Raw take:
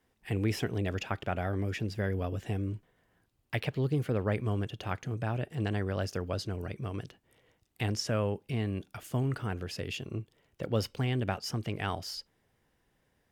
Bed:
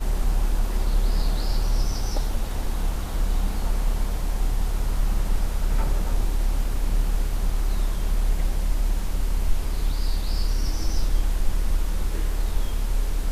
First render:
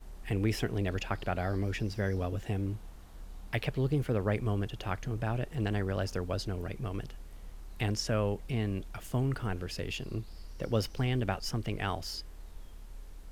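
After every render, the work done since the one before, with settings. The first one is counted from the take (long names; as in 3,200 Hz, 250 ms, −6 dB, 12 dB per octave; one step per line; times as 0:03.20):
mix in bed −23 dB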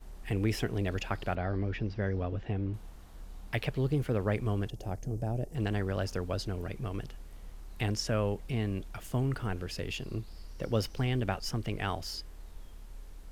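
0:01.35–0:02.74: high-frequency loss of the air 220 metres
0:04.70–0:05.55: flat-topped bell 2,000 Hz −15 dB 2.3 octaves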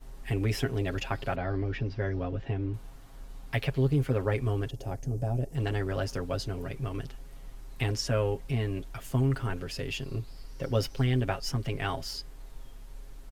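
comb filter 7.4 ms, depth 75%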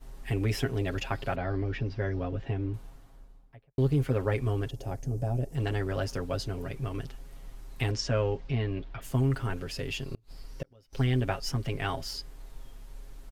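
0:02.61–0:03.78: fade out and dull
0:07.91–0:09.01: low-pass filter 7,500 Hz → 3,800 Hz 24 dB per octave
0:10.11–0:10.93: gate with flip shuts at −24 dBFS, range −32 dB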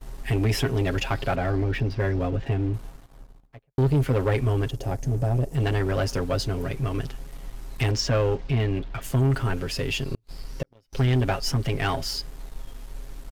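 leveller curve on the samples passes 2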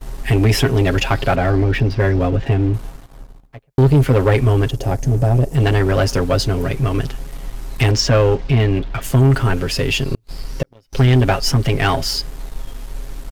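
level +9 dB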